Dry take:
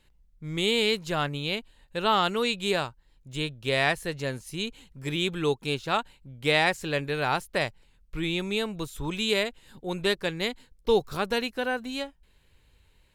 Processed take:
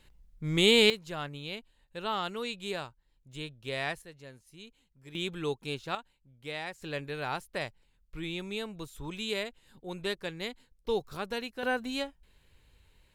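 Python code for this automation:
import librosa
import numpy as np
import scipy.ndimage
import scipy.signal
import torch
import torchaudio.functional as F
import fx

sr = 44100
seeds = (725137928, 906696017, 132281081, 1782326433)

y = fx.gain(x, sr, db=fx.steps((0.0, 3.0), (0.9, -9.5), (4.02, -18.0), (5.15, -7.0), (5.95, -15.5), (6.82, -8.0), (11.63, -1.0)))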